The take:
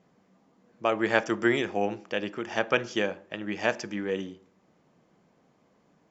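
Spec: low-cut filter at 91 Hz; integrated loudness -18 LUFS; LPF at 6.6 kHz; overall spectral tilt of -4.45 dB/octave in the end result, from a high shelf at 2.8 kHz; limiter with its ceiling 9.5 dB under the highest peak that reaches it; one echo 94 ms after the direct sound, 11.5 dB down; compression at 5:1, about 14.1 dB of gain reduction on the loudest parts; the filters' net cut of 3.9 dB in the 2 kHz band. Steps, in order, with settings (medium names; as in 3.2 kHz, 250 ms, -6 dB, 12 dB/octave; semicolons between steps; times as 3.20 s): high-pass 91 Hz; low-pass 6.6 kHz; peaking EQ 2 kHz -8 dB; treble shelf 2.8 kHz +7.5 dB; compression 5:1, threshold -35 dBFS; peak limiter -28.5 dBFS; delay 94 ms -11.5 dB; trim +23.5 dB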